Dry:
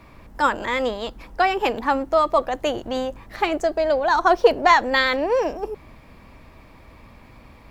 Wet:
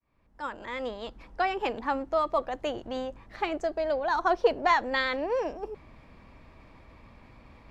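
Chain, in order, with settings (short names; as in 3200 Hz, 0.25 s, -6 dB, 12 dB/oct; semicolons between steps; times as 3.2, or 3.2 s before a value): opening faded in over 1.13 s; reverse; upward compressor, threshold -38 dBFS; reverse; air absorption 58 m; gain -8 dB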